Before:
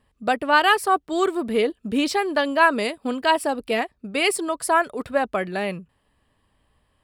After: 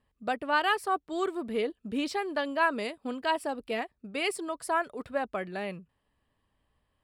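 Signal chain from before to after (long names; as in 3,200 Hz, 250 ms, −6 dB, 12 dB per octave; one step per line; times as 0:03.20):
high-shelf EQ 7,300 Hz −5.5 dB
level −9 dB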